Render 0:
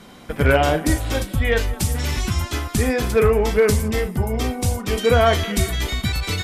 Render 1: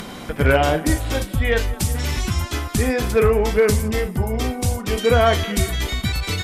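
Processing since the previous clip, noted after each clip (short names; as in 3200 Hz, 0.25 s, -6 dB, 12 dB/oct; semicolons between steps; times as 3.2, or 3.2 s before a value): upward compressor, threshold -24 dBFS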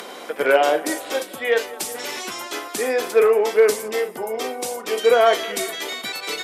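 ladder high-pass 340 Hz, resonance 30%; gain +6 dB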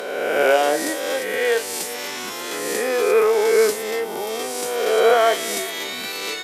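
spectral swells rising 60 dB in 1.66 s; gain -3 dB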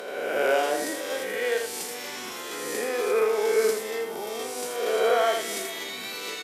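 echo 81 ms -5.5 dB; gain -7.5 dB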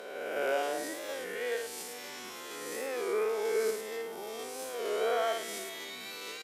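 stepped spectrum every 50 ms; record warp 33 1/3 rpm, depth 100 cents; gain -7 dB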